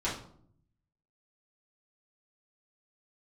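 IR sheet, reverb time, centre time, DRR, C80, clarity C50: 0.60 s, 33 ms, −9.0 dB, 10.5 dB, 6.0 dB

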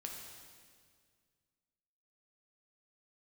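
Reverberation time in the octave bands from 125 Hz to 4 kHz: 2.5, 2.3, 2.0, 1.8, 1.8, 1.8 seconds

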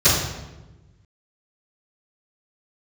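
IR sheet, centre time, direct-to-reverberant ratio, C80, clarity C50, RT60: 63 ms, −19.0 dB, 4.0 dB, 1.0 dB, 1.1 s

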